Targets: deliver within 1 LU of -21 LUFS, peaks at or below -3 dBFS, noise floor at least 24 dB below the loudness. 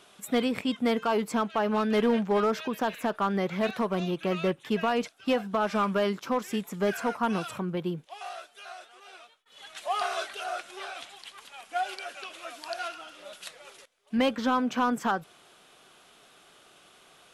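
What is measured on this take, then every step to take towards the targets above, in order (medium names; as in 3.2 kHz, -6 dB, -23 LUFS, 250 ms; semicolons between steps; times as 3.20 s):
clipped samples 0.5%; clipping level -18.0 dBFS; loudness -29.0 LUFS; peak level -18.0 dBFS; loudness target -21.0 LUFS
-> clip repair -18 dBFS; trim +8 dB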